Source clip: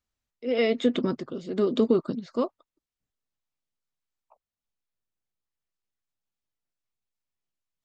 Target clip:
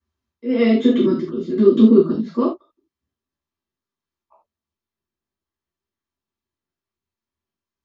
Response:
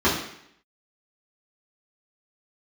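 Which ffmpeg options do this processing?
-filter_complex "[0:a]asettb=1/sr,asplit=3[a][b][c];[a]atrim=end=0.924[d];[b]atrim=start=0.92:end=2.01,asetpts=PTS-STARTPTS,afade=t=in:d=0.004:c=qsin,afade=t=out:st=1.086:d=0.004:c=qsin,equalizer=f=780:w=1.8:g=-12[e];[c]atrim=start=2.006[f];[d][e]acrossfade=d=0.004:c1=hsin:c2=qsin[g];[g][f]acrossfade=d=0.004:c1=qsin:c2=hsin[h];[1:a]atrim=start_sample=2205,atrim=end_sample=4410[i];[h][i]afir=irnorm=-1:irlink=0,volume=-12.5dB"

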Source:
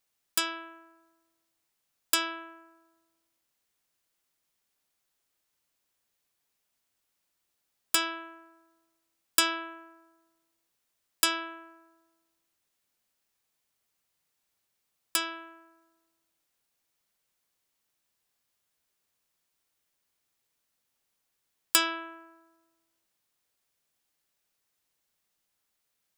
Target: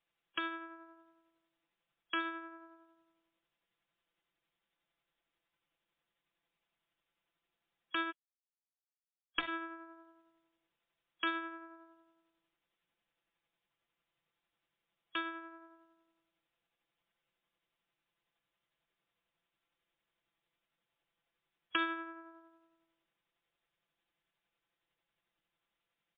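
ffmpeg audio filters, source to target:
-filter_complex "[0:a]tremolo=f=11:d=0.31,acrossover=split=360|1200[a][b][c];[b]acompressor=threshold=-57dB:ratio=6[d];[a][d][c]amix=inputs=3:normalize=0,asplit=3[e][f][g];[e]afade=t=out:st=8.1:d=0.02[h];[f]aeval=exprs='val(0)*gte(abs(val(0)),0.075)':c=same,afade=t=in:st=8.1:d=0.02,afade=t=out:st=9.47:d=0.02[i];[g]afade=t=in:st=9.47:d=0.02[j];[h][i][j]amix=inputs=3:normalize=0,aecho=1:1:5.9:0.77,volume=-1dB" -ar 8000 -c:a libmp3lame -b:a 24k

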